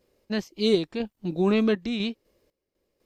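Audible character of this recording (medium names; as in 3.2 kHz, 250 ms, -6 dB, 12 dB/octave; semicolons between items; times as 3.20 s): random-step tremolo 4 Hz, depth 85%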